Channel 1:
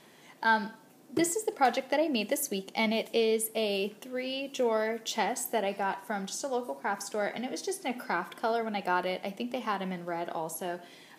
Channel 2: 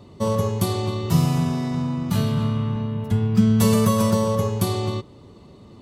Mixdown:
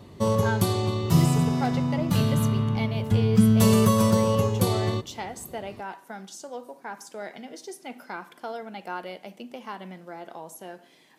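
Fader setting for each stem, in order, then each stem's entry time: -5.5, -1.0 dB; 0.00, 0.00 s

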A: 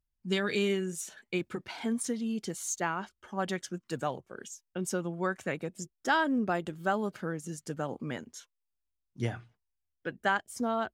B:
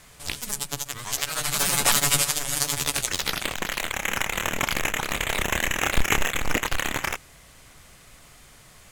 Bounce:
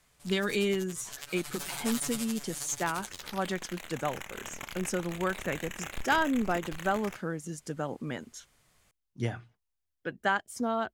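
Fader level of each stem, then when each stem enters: +0.5, -16.5 dB; 0.00, 0.00 s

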